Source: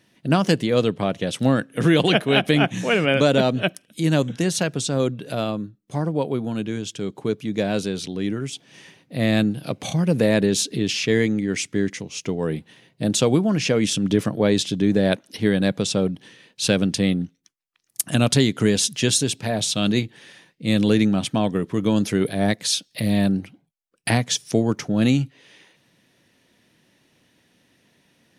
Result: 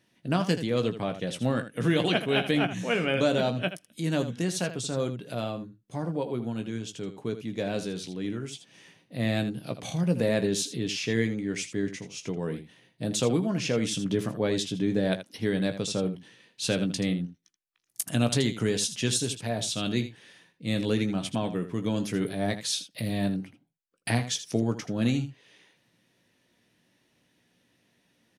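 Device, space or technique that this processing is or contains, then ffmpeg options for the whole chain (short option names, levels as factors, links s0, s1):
slapback doubling: -filter_complex "[0:a]asplit=3[s0][s1][s2];[s1]adelay=17,volume=0.376[s3];[s2]adelay=80,volume=0.266[s4];[s0][s3][s4]amix=inputs=3:normalize=0,volume=0.398"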